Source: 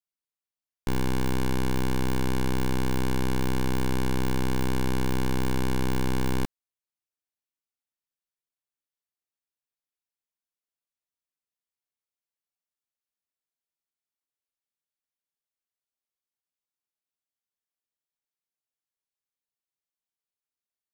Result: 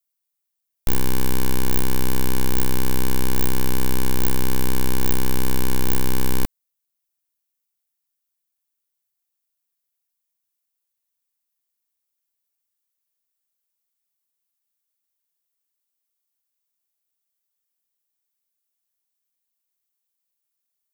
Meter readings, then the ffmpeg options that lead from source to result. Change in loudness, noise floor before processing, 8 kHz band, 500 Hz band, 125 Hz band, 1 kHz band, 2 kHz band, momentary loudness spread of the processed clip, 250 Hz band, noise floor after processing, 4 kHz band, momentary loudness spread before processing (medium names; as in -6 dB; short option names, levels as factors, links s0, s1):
+4.0 dB, under -85 dBFS, +10.5 dB, +2.0 dB, +1.5 dB, +2.0 dB, +3.0 dB, 1 LU, +1.5 dB, -80 dBFS, +5.5 dB, 1 LU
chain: -af "aemphasis=mode=production:type=50kf,aeval=exprs='0.398*(cos(1*acos(clip(val(0)/0.398,-1,1)))-cos(1*PI/2))+0.158*(cos(8*acos(clip(val(0)/0.398,-1,1)))-cos(8*PI/2))':c=same,volume=1.19"